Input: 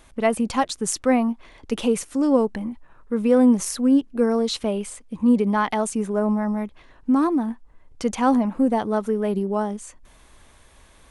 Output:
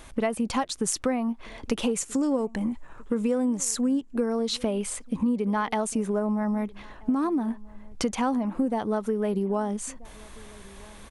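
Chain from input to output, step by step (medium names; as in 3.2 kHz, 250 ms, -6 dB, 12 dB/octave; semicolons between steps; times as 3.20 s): 1.96–4.17 s: peaking EQ 7.3 kHz +11 dB 0.41 oct; compression 6:1, threshold -29 dBFS, peak gain reduction 16 dB; echo from a far wall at 220 m, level -23 dB; trim +5.5 dB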